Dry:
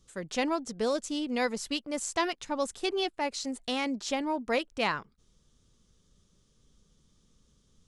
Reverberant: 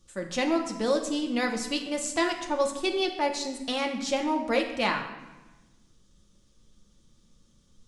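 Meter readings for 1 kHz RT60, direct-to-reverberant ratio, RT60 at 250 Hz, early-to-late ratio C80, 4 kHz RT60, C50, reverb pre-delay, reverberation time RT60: 1.1 s, 2.0 dB, 1.7 s, 10.0 dB, 0.85 s, 7.5 dB, 3 ms, 1.1 s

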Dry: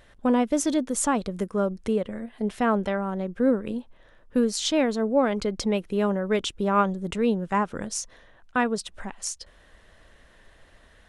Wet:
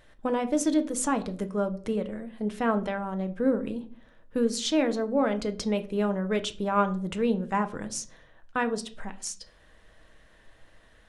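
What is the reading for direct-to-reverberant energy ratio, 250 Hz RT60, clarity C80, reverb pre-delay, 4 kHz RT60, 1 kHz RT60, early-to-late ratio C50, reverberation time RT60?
8.0 dB, 0.75 s, 20.5 dB, 6 ms, 0.30 s, 0.40 s, 17.0 dB, 0.45 s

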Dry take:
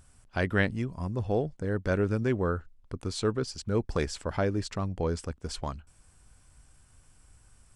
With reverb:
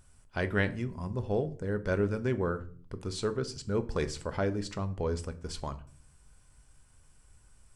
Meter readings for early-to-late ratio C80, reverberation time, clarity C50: 21.0 dB, 0.45 s, 17.0 dB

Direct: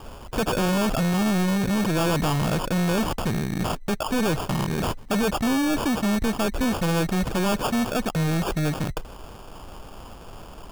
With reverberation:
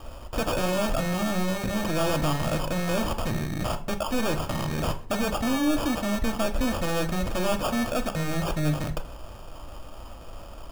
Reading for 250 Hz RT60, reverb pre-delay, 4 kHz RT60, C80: 0.60 s, 3 ms, 0.30 s, 19.0 dB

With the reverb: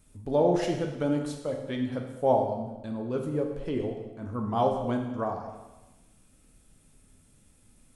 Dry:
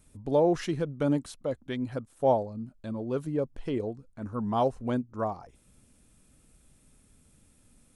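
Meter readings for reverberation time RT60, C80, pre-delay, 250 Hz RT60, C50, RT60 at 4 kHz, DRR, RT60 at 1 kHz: 1.1 s, 7.0 dB, 5 ms, 1.2 s, 5.0 dB, 1.1 s, 2.0 dB, 1.1 s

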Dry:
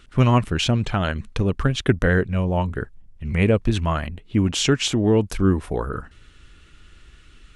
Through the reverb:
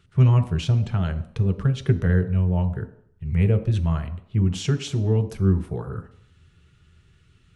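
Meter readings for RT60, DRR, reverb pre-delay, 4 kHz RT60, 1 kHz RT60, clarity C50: 0.65 s, 6.5 dB, 3 ms, 0.65 s, 0.70 s, 13.0 dB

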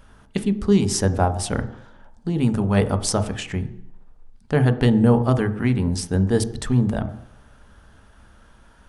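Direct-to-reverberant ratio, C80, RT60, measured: 9.0 dB, 16.5 dB, 0.70 s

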